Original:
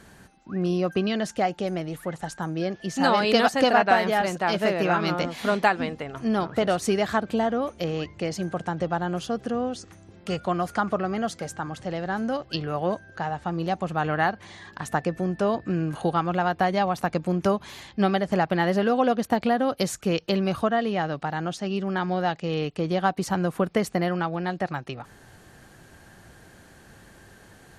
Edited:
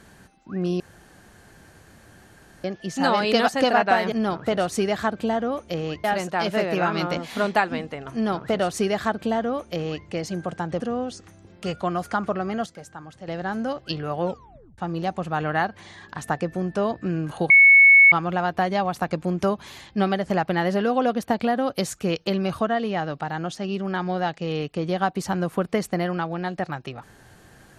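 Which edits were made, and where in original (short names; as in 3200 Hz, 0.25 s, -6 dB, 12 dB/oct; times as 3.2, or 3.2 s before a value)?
0.8–2.64 room tone
6.22–8.14 copy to 4.12
8.88–9.44 cut
11.3–11.92 gain -8 dB
12.86 tape stop 0.56 s
16.14 add tone 2210 Hz -8.5 dBFS 0.62 s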